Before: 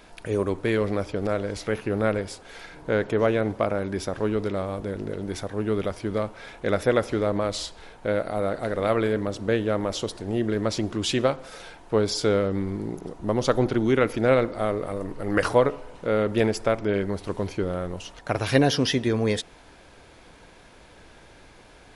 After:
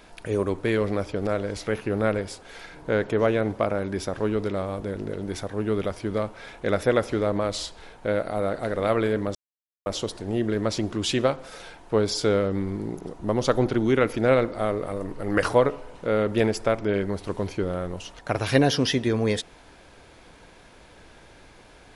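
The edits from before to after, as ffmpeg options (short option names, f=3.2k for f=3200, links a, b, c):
-filter_complex "[0:a]asplit=3[a][b][c];[a]atrim=end=9.35,asetpts=PTS-STARTPTS,afade=t=out:st=9.346:d=0.004:c=hsin[d];[b]atrim=start=9.35:end=9.86,asetpts=PTS-STARTPTS,volume=0[e];[c]atrim=start=9.86,asetpts=PTS-STARTPTS,afade=t=in:d=0.004:c=hsin[f];[d][e][f]concat=n=3:v=0:a=1"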